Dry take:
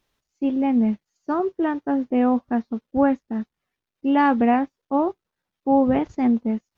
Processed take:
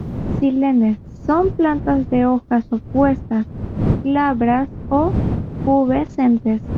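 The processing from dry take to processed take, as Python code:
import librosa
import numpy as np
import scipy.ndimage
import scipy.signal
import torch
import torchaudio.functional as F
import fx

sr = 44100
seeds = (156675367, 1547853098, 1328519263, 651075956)

y = fx.dmg_wind(x, sr, seeds[0], corner_hz=120.0, level_db=-25.0)
y = fx.rider(y, sr, range_db=4, speed_s=0.5)
y = fx.low_shelf(y, sr, hz=62.0, db=-12.0)
y = fx.band_squash(y, sr, depth_pct=40)
y = F.gain(torch.from_numpy(y), 4.5).numpy()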